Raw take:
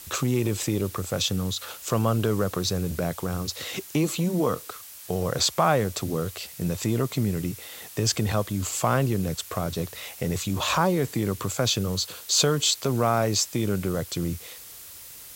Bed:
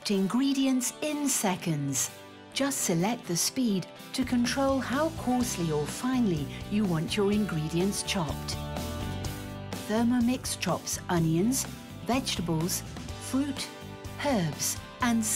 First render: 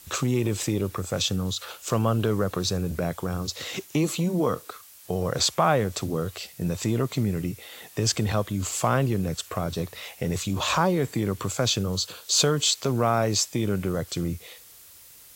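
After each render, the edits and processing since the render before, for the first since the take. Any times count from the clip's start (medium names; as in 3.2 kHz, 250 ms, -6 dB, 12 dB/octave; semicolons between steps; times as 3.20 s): noise print and reduce 6 dB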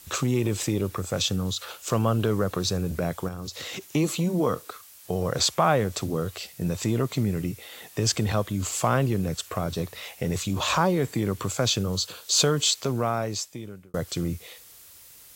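3.28–3.86 s: compression, threshold -31 dBFS; 12.67–13.94 s: fade out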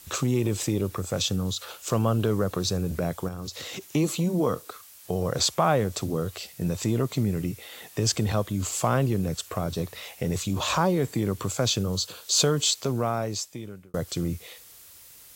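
dynamic bell 1.9 kHz, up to -3 dB, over -40 dBFS, Q 0.73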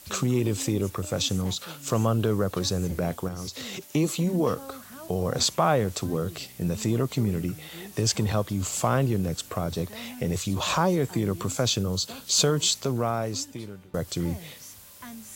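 add bed -16.5 dB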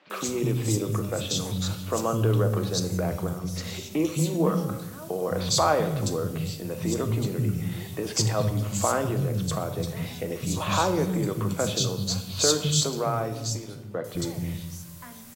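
three bands offset in time mids, highs, lows 100/210 ms, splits 220/3000 Hz; simulated room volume 580 m³, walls mixed, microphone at 0.6 m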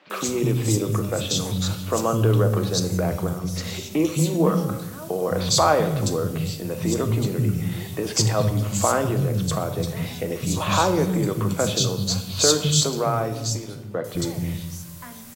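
trim +4 dB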